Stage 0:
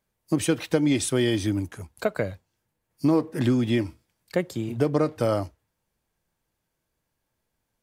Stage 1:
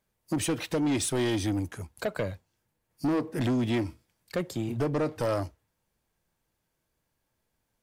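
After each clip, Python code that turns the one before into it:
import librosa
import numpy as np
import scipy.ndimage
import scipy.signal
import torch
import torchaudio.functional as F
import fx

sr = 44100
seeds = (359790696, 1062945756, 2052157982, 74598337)

y = 10.0 ** (-22.5 / 20.0) * np.tanh(x / 10.0 ** (-22.5 / 20.0))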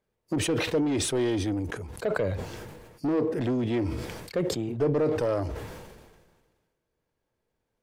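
y = fx.lowpass(x, sr, hz=3400.0, slope=6)
y = fx.peak_eq(y, sr, hz=440.0, db=8.0, octaves=0.67)
y = fx.sustainer(y, sr, db_per_s=38.0)
y = y * librosa.db_to_amplitude(-2.5)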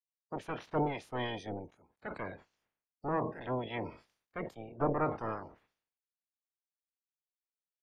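y = fx.spec_clip(x, sr, under_db=27)
y = fx.notch(y, sr, hz=7900.0, q=15.0)
y = fx.spectral_expand(y, sr, expansion=2.5)
y = y * librosa.db_to_amplitude(-8.0)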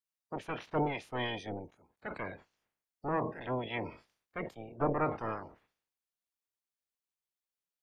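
y = fx.dynamic_eq(x, sr, hz=2500.0, q=1.5, threshold_db=-55.0, ratio=4.0, max_db=5)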